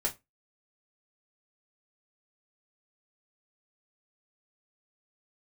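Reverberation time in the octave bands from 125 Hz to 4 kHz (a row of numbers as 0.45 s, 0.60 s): 0.25 s, 0.25 s, 0.20 s, 0.20 s, 0.20 s, 0.15 s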